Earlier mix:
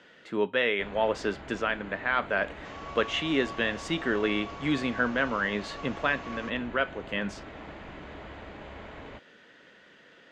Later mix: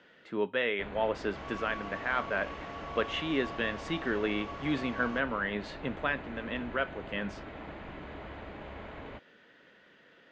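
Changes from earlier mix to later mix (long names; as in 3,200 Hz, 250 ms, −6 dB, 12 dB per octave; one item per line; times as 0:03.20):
speech −3.5 dB
second sound: entry −1.30 s
master: add high-frequency loss of the air 90 metres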